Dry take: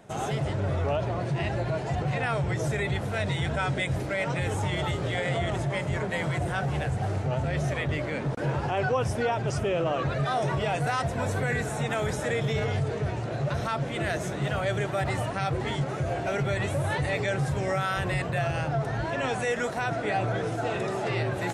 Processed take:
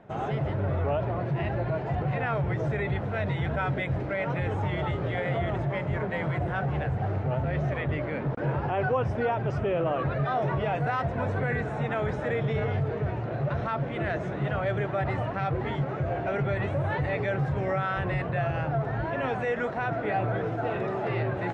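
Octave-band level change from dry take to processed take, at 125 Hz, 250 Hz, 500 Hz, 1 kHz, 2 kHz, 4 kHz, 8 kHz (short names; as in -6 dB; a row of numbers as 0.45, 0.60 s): 0.0 dB, 0.0 dB, 0.0 dB, 0.0 dB, -2.0 dB, -9.0 dB, under -20 dB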